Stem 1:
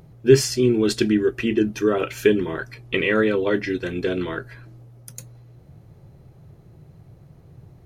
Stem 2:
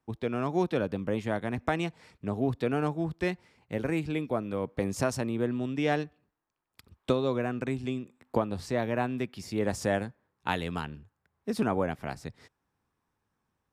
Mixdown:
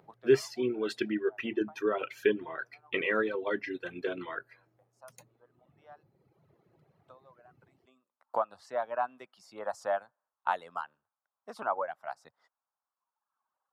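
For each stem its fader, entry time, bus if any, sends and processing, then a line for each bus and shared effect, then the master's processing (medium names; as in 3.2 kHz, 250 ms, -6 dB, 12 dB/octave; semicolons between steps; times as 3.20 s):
-4.0 dB, 0.00 s, no send, peaking EQ 7.4 kHz -14 dB 2.3 oct
-12.0 dB, 0.00 s, no send, high-order bell 900 Hz +15 dB; band-stop 2.4 kHz, Q 20; auto duck -23 dB, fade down 0.50 s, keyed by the first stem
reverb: none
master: frequency weighting A; reverb removal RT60 1.4 s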